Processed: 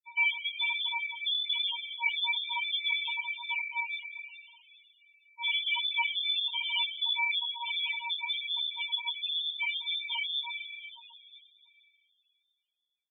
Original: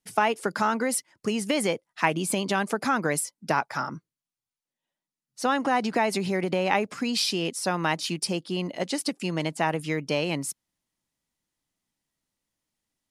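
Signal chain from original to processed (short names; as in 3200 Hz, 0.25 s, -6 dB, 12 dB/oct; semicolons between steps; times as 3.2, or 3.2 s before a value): sample sorter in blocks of 32 samples; echo 0.189 s -23.5 dB; crossover distortion -48 dBFS; on a send at -7 dB: reverb RT60 2.9 s, pre-delay 9 ms; on the sum: inverted band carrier 3700 Hz; in parallel at +1.5 dB: compressor, threshold -33 dBFS, peak gain reduction 14.5 dB; on the sum: chorus voices 2, 1.1 Hz, delay 19 ms, depth 3 ms; loudest bins only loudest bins 4; 7.31–9.15 three-band squash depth 40%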